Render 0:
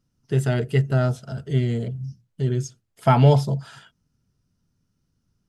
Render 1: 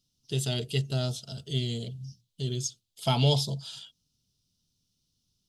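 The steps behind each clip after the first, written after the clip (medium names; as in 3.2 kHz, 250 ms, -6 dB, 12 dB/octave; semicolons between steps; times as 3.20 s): resonant high shelf 2.5 kHz +12.5 dB, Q 3; trim -9 dB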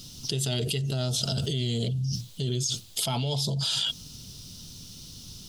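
level flattener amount 100%; trim -8 dB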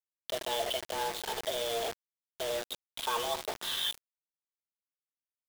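mistuned SSB +230 Hz 240–3100 Hz; delay 77 ms -12.5 dB; bit crusher 6-bit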